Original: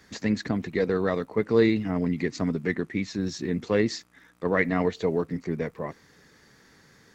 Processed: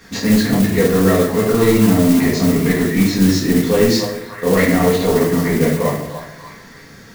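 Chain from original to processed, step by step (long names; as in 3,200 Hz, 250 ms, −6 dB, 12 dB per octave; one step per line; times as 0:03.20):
echo through a band-pass that steps 292 ms, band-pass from 810 Hz, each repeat 0.7 octaves, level −8.5 dB
soft clipping −16.5 dBFS, distortion −15 dB
brickwall limiter −21.5 dBFS, peak gain reduction 4.5 dB
rectangular room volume 190 cubic metres, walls mixed, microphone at 1.7 metres
noise that follows the level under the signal 16 dB
level +8.5 dB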